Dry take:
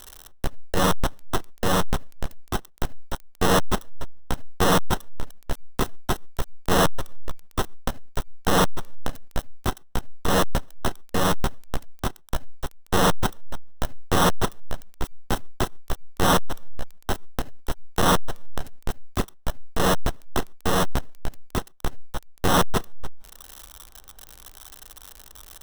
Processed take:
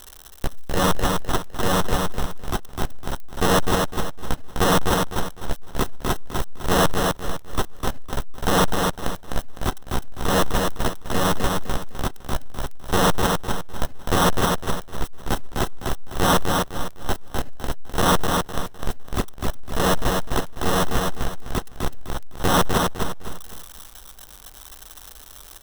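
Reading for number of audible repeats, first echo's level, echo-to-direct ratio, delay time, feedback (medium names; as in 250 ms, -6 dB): 4, -4.0 dB, -3.5 dB, 254 ms, 32%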